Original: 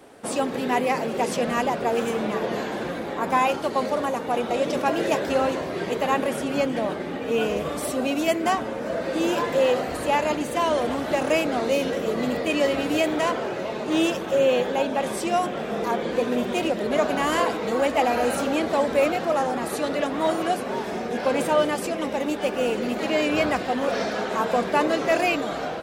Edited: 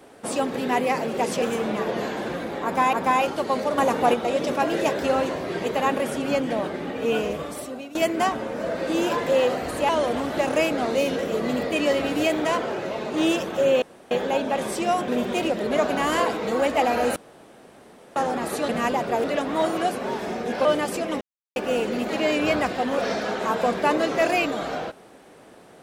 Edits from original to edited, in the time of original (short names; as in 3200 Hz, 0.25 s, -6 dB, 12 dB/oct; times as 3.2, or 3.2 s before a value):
1.42–1.97 move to 19.89
3.19–3.48 loop, 2 plays
4.04–4.4 gain +5.5 dB
7.41–8.21 fade out, to -18.5 dB
10.15–10.63 cut
14.56 insert room tone 0.29 s
15.53–16.28 cut
18.36–19.36 room tone
21.3–21.55 cut
22.11–22.46 mute